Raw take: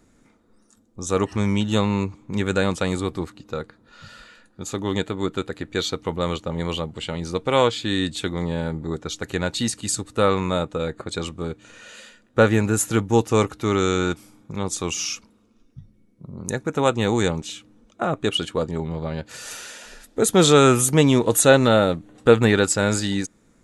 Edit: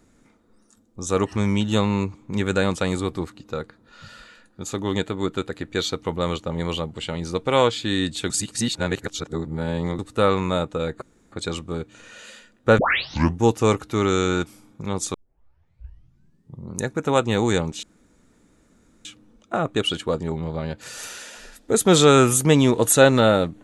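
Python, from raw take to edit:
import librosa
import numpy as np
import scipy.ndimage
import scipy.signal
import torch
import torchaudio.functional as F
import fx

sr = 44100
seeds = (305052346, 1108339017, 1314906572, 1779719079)

y = fx.edit(x, sr, fx.reverse_span(start_s=8.3, length_s=1.69),
    fx.insert_room_tone(at_s=11.02, length_s=0.3),
    fx.tape_start(start_s=12.48, length_s=0.63),
    fx.tape_start(start_s=14.84, length_s=1.57),
    fx.insert_room_tone(at_s=17.53, length_s=1.22), tone=tone)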